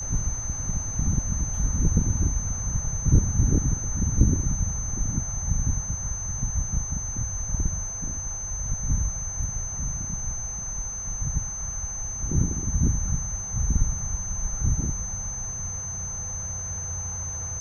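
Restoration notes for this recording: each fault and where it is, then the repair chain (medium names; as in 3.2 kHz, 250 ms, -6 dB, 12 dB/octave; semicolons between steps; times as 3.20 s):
whine 6.2 kHz -31 dBFS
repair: band-stop 6.2 kHz, Q 30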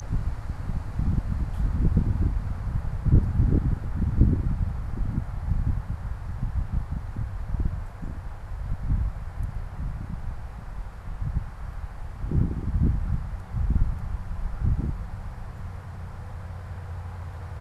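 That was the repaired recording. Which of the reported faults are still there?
nothing left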